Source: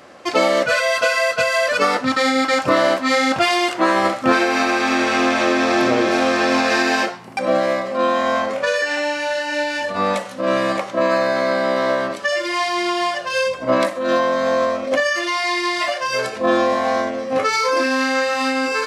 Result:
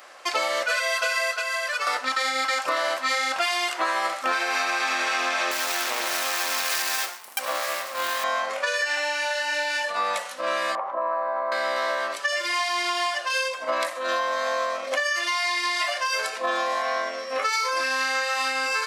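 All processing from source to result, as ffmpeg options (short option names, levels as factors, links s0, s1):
-filter_complex "[0:a]asettb=1/sr,asplit=3[s0][s1][s2];[s0]atrim=end=1.374[s3];[s1]atrim=start=1.37:end=1.87,asetpts=PTS-STARTPTS,afade=t=in:d=0.004:c=qsin,afade=t=out:st=0.496:d=0.004:c=qsin,highpass=f=520:p=1,acrossover=split=700|1600[s4][s5][s6];[s4]acompressor=threshold=0.0178:ratio=4[s7];[s5]acompressor=threshold=0.0398:ratio=4[s8];[s6]acompressor=threshold=0.0316:ratio=4[s9];[s7][s8][s9]amix=inputs=3:normalize=0[s10];[s2]atrim=start=1.866[s11];[s3][s10]acrossfade=d=0.004:c1=hsin:c2=qsin[s12];[s12][s11]acrossfade=d=0.004:c1=qsin:c2=hsin,asettb=1/sr,asplit=3[s13][s14][s15];[s13]atrim=end=5.514[s16];[s14]atrim=start=5.51:end=8.24,asetpts=PTS-STARTPTS,afade=t=in:d=0.004:c=qsin,afade=t=out:st=2.726:d=0.004:c=qsin,aeval=exprs='max(val(0),0)':c=same,aemphasis=mode=production:type=50fm[s17];[s15]atrim=start=8.236[s18];[s16][s17]acrossfade=d=0.004:c1=hsin:c2=qsin[s19];[s19][s18]acrossfade=d=0.004:c1=qsin:c2=hsin,asettb=1/sr,asplit=3[s20][s21][s22];[s20]atrim=end=10.754[s23];[s21]atrim=start=10.75:end=11.52,asetpts=PTS-STARTPTS,afade=t=in:d=0.004:c=qsin,afade=t=out:st=0.766:d=0.004:c=qsin,acompressor=threshold=0.0501:ratio=2:attack=3.2:release=140:knee=1:detection=peak,lowpass=f=960:t=q:w=2.9[s24];[s22]atrim=start=11.516[s25];[s23][s24]acrossfade=d=0.004:c1=hsin:c2=qsin[s26];[s26][s25]acrossfade=d=0.004:c1=qsin:c2=hsin,asettb=1/sr,asplit=3[s27][s28][s29];[s27]atrim=end=16.824[s30];[s28]atrim=start=16.82:end=17.42,asetpts=PTS-STARTPTS,afade=t=in:d=0.004:c=qsin,afade=t=out:st=0.596:d=0.004:c=qsin,acrossover=split=4200[s31][s32];[s32]acompressor=threshold=0.00447:ratio=4:attack=1:release=60[s33];[s31][s33]amix=inputs=2:normalize=0,aeval=exprs='val(0)+0.00631*sin(2*PI*5500*n/s)':c=same,asuperstop=centerf=840:order=4:qfactor=5.2[s34];[s29]atrim=start=17.416[s35];[s30][s34]acrossfade=d=0.004:c1=hsin:c2=qsin[s36];[s36][s35]acrossfade=d=0.004:c1=qsin:c2=hsin,highpass=830,highshelf=f=10000:g=8,acompressor=threshold=0.0794:ratio=4"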